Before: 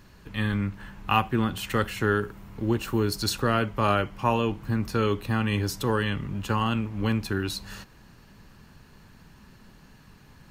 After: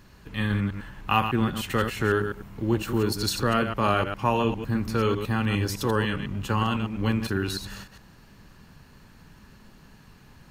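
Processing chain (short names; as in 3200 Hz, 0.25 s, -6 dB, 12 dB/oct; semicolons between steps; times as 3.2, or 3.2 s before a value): reverse delay 0.101 s, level -7 dB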